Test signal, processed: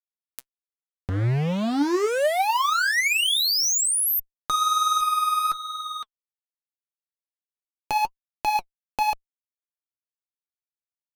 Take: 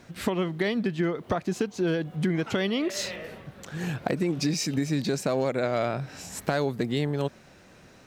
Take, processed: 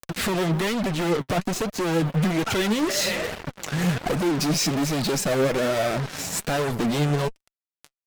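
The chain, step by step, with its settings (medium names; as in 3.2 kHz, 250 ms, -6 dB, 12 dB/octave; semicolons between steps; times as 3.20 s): fuzz box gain 39 dB, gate -42 dBFS; upward compressor, threshold -18 dBFS; flange 1.2 Hz, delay 1.1 ms, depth 6.7 ms, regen +47%; trim -4 dB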